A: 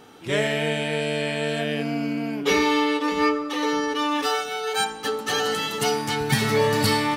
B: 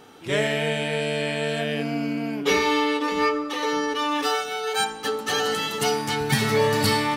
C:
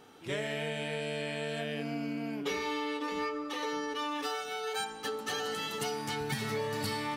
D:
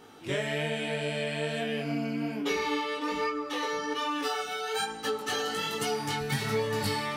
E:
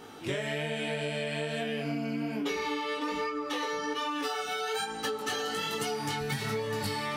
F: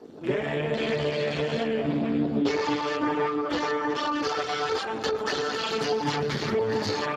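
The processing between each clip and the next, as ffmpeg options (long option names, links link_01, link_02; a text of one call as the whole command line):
ffmpeg -i in.wav -af "bandreject=frequency=60:width_type=h:width=6,bandreject=frequency=120:width_type=h:width=6,bandreject=frequency=180:width_type=h:width=6,bandreject=frequency=240:width_type=h:width=6,bandreject=frequency=300:width_type=h:width=6" out.wav
ffmpeg -i in.wav -af "acompressor=threshold=-24dB:ratio=4,volume=-7.5dB" out.wav
ffmpeg -i in.wav -af "flanger=delay=17.5:depth=4.6:speed=1.2,volume=7dB" out.wav
ffmpeg -i in.wav -af "acompressor=threshold=-34dB:ratio=6,volume=4.5dB" out.wav
ffmpeg -i in.wav -af "afwtdn=0.00891,aecho=1:1:393|786|1179|1572:0.133|0.06|0.027|0.0122,volume=8dB" -ar 32000 -c:a libspeex -b:a 8k out.spx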